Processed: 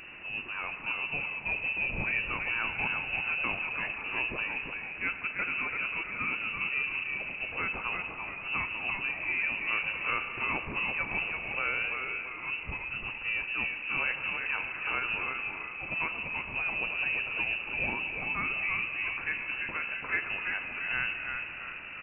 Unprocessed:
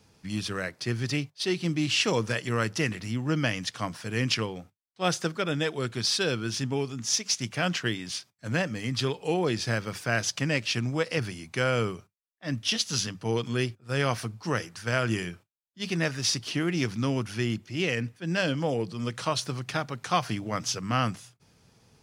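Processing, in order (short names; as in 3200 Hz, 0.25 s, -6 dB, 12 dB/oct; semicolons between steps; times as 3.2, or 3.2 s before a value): zero-crossing step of -32.5 dBFS; on a send: frequency-shifting echo 0.338 s, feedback 43%, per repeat +77 Hz, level -5 dB; on the sum: spring tank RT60 3.9 s, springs 36 ms, chirp 30 ms, DRR 8.5 dB; inverted band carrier 2800 Hz; gain -7.5 dB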